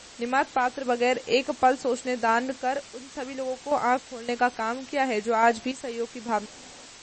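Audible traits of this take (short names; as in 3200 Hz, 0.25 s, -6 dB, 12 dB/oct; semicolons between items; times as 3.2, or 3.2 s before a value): random-step tremolo, depth 80%; a quantiser's noise floor 8-bit, dither triangular; MP3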